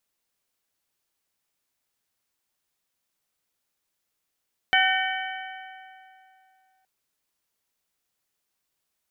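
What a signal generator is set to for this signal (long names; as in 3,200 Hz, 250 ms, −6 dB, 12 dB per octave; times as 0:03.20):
struck metal bell, length 2.12 s, lowest mode 759 Hz, modes 5, decay 2.82 s, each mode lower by 0 dB, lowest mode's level −22 dB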